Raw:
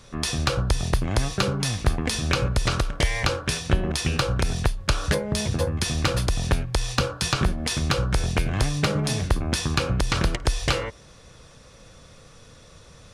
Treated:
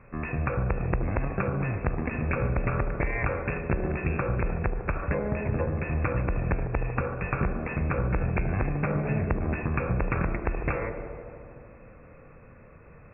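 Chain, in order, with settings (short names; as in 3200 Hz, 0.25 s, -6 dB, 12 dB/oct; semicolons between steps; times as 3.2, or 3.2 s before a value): compressor, threshold -20 dBFS, peak gain reduction 6.5 dB; tube stage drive 12 dB, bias 0.6; brick-wall FIR low-pass 2700 Hz; band-limited delay 75 ms, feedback 81%, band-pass 400 Hz, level -7 dB; on a send at -12 dB: reverb RT60 2.0 s, pre-delay 99 ms; on the sum: gain +1 dB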